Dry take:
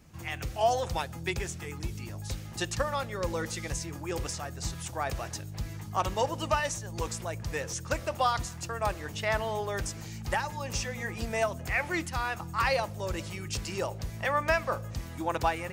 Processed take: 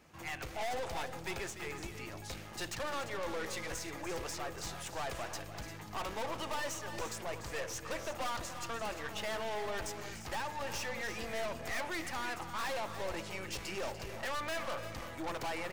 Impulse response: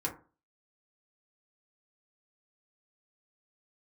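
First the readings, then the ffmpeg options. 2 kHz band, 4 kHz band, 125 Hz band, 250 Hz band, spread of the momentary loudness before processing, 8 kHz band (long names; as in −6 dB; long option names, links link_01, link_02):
−6.0 dB, −4.0 dB, −13.0 dB, −7.0 dB, 9 LU, −6.0 dB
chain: -af "bass=frequency=250:gain=-14,treble=frequency=4000:gain=-7,aeval=exprs='(tanh(100*val(0)+0.55)-tanh(0.55))/100':channel_layout=same,aecho=1:1:293|346:0.251|0.266,volume=4dB"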